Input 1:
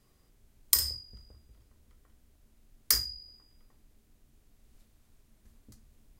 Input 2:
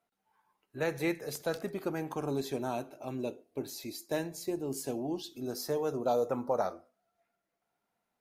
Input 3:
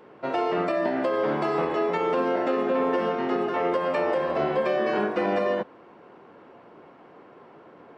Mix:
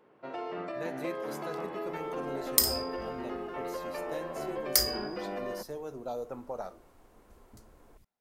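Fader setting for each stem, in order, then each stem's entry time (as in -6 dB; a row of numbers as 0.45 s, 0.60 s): +0.5 dB, -8.0 dB, -12.5 dB; 1.85 s, 0.00 s, 0.00 s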